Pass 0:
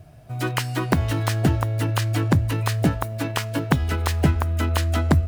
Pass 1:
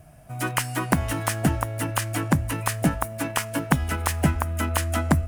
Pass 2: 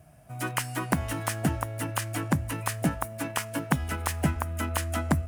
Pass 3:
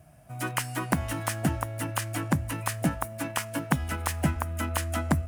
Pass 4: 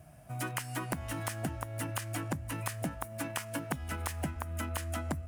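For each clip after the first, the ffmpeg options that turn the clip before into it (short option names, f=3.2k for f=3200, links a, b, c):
-af "equalizer=f=100:t=o:w=0.67:g=-11,equalizer=f=400:t=o:w=0.67:g=-8,equalizer=f=4k:t=o:w=0.67:g=-8,equalizer=f=10k:t=o:w=0.67:g=7,volume=1.5dB"
-af "highpass=54,volume=-4.5dB"
-af "bandreject=f=430:w=12"
-af "acompressor=threshold=-33dB:ratio=5"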